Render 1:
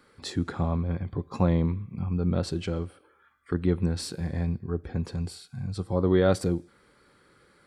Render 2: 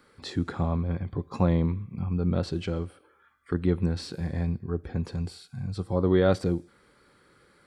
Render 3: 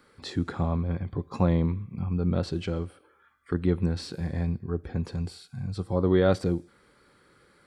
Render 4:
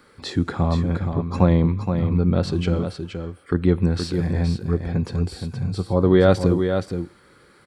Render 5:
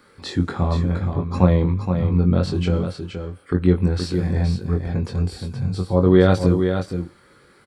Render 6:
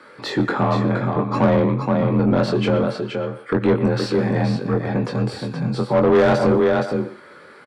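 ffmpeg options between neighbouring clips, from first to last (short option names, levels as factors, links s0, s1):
-filter_complex "[0:a]acrossover=split=5300[s0][s1];[s1]acompressor=threshold=0.00251:ratio=4:attack=1:release=60[s2];[s0][s2]amix=inputs=2:normalize=0"
-af anull
-af "aecho=1:1:471:0.447,volume=2.11"
-filter_complex "[0:a]asplit=2[s0][s1];[s1]adelay=22,volume=0.562[s2];[s0][s2]amix=inputs=2:normalize=0,volume=0.891"
-filter_complex "[0:a]asplit=2[s0][s1];[s1]adelay=120,highpass=300,lowpass=3400,asoftclip=type=hard:threshold=0.282,volume=0.224[s2];[s0][s2]amix=inputs=2:normalize=0,afreqshift=32,asplit=2[s3][s4];[s4]highpass=f=720:p=1,volume=17.8,asoftclip=type=tanh:threshold=0.891[s5];[s3][s5]amix=inputs=2:normalize=0,lowpass=f=1300:p=1,volume=0.501,volume=0.562"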